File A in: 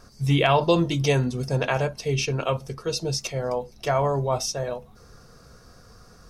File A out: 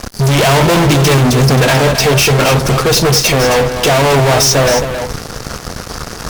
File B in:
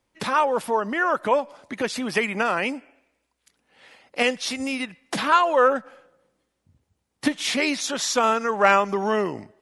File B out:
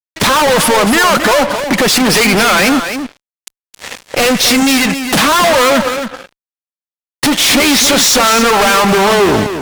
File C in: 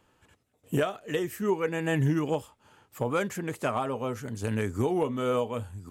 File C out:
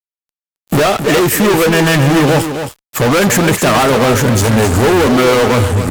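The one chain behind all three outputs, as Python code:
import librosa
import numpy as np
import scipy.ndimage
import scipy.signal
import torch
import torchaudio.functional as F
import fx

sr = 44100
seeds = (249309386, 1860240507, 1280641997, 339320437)

y = fx.fuzz(x, sr, gain_db=43.0, gate_db=-48.0)
y = y + 10.0 ** (-8.5 / 20.0) * np.pad(y, (int(268 * sr / 1000.0), 0))[:len(y)]
y = F.gain(torch.from_numpy(y), 4.0).numpy()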